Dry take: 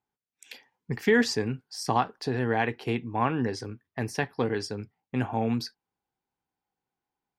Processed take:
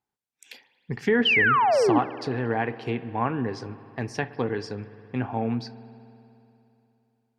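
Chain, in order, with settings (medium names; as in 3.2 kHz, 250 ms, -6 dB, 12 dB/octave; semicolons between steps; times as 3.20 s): low-pass that closes with the level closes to 2.1 kHz, closed at -22 dBFS; painted sound fall, 1.25–1.99 s, 270–3200 Hz -20 dBFS; spring tank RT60 3 s, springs 58 ms, chirp 20 ms, DRR 14.5 dB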